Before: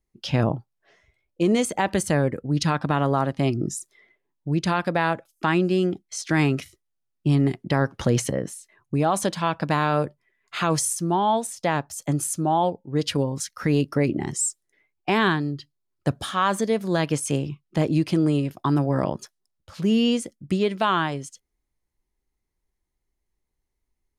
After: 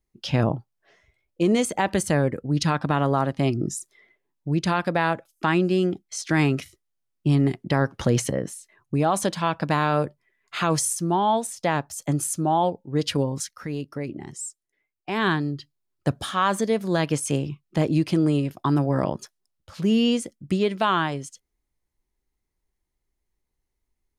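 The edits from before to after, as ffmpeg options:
-filter_complex "[0:a]asplit=3[s0][s1][s2];[s0]atrim=end=13.66,asetpts=PTS-STARTPTS,afade=t=out:st=13.4:d=0.26:silence=0.334965[s3];[s1]atrim=start=13.66:end=15.07,asetpts=PTS-STARTPTS,volume=0.335[s4];[s2]atrim=start=15.07,asetpts=PTS-STARTPTS,afade=t=in:d=0.26:silence=0.334965[s5];[s3][s4][s5]concat=n=3:v=0:a=1"

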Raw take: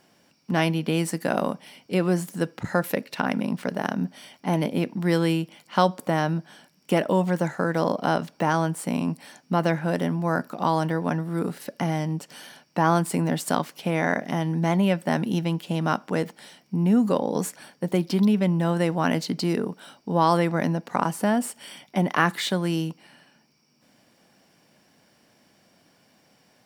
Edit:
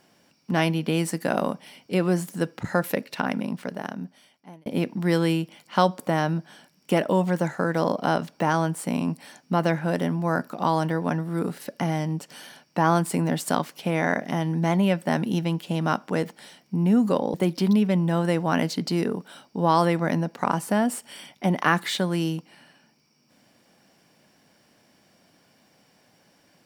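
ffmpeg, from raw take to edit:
-filter_complex "[0:a]asplit=3[s0][s1][s2];[s0]atrim=end=4.66,asetpts=PTS-STARTPTS,afade=t=out:st=3.07:d=1.59[s3];[s1]atrim=start=4.66:end=17.342,asetpts=PTS-STARTPTS,afade=t=in:d=0.004:c=hsin[s4];[s2]atrim=start=17.858[s5];[s3][s4]concat=n=2:v=0:a=1[s6];[s6][s5]acrossfade=d=0.004:c1=hsin:c2=hsin"

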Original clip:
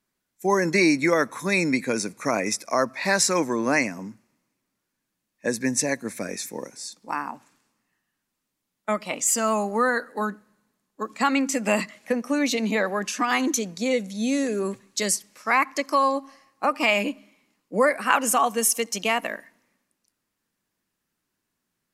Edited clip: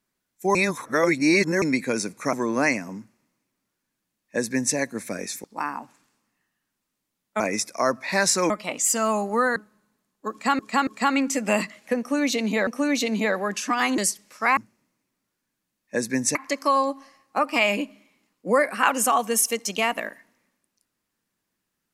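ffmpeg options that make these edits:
-filter_complex "[0:a]asplit=14[s0][s1][s2][s3][s4][s5][s6][s7][s8][s9][s10][s11][s12][s13];[s0]atrim=end=0.552[s14];[s1]atrim=start=0.548:end=1.622,asetpts=PTS-STARTPTS,areverse[s15];[s2]atrim=start=1.618:end=2.332[s16];[s3]atrim=start=3.428:end=6.542[s17];[s4]atrim=start=6.958:end=8.922[s18];[s5]atrim=start=2.328:end=3.432[s19];[s6]atrim=start=8.918:end=9.982[s20];[s7]atrim=start=10.308:end=11.342[s21];[s8]atrim=start=11.058:end=11.342[s22];[s9]atrim=start=11.058:end=12.862[s23];[s10]atrim=start=12.178:end=13.492[s24];[s11]atrim=start=15.028:end=15.622[s25];[s12]atrim=start=4.078:end=5.862[s26];[s13]atrim=start=15.618[s27];[s14][s15]acrossfade=d=0.004:c1=hsin:c2=hsin[s28];[s28][s16]acrossfade=d=0.004:c1=hsin:c2=hsin[s29];[s29][s17]acrossfade=d=0.004:c1=hsin:c2=hsin[s30];[s30][s18]acrossfade=d=0.004:c1=hsin:c2=hsin[s31];[s31][s19]acrossfade=d=0.004:c1=hsin:c2=hsin[s32];[s32][s20]acrossfade=d=0.004:c1=hsin:c2=hsin[s33];[s33][s21]acrossfade=d=0.004:c1=hsin:c2=hsin[s34];[s34][s22]acrossfade=d=0.004:c1=hsin:c2=hsin[s35];[s35][s23]acrossfade=d=0.004:c1=hsin:c2=hsin[s36];[s36][s24]acrossfade=d=0.004:c1=hsin:c2=hsin[s37];[s37][s25]acrossfade=d=0.004:c1=hsin:c2=hsin[s38];[s38][s26]acrossfade=d=0.004:c1=hsin:c2=hsin[s39];[s39][s27]acrossfade=d=0.004:c1=hsin:c2=hsin"

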